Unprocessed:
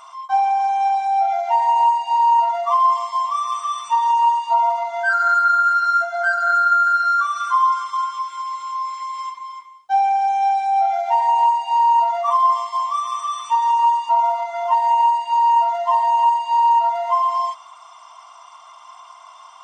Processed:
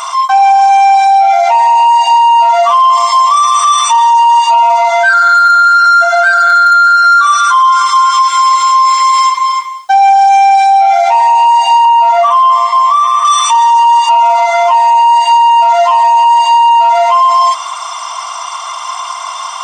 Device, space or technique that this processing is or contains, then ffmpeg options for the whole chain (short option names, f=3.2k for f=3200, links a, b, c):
mastering chain: -filter_complex "[0:a]equalizer=f=2.9k:t=o:w=0.77:g=-3,acompressor=threshold=-25dB:ratio=1.5,asoftclip=type=tanh:threshold=-13.5dB,tiltshelf=f=1.3k:g=-5.5,asoftclip=type=hard:threshold=-16dB,alimiter=level_in=24dB:limit=-1dB:release=50:level=0:latency=1,asettb=1/sr,asplit=3[a][b][c];[a]atrim=end=11.854[d];[b]atrim=start=11.85:end=13.25,asetpts=PTS-STARTPTS,afade=t=in:d=0.004:c=qsin,afade=t=out:st=1.396:d=0.004:c=qsin,acrossover=split=2800[e][f];[f]acompressor=threshold=-32dB:ratio=4:attack=1:release=60[g];[e][g]amix=inputs=2:normalize=0[h];[c]atrim=start=13.246[i];[d][h]acrossfade=d=0.004:c1=hsin:c2=qsin[j];[j][i]acrossfade=d=0.004:c1=qsin:c2=hsin,volume=-1dB"